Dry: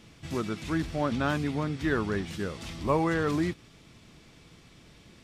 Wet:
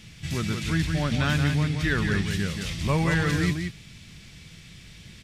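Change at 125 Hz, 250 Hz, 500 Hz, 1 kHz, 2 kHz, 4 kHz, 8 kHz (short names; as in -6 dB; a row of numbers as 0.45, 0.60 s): +9.0, +2.5, -2.0, -1.0, +7.0, +9.5, +9.5 dB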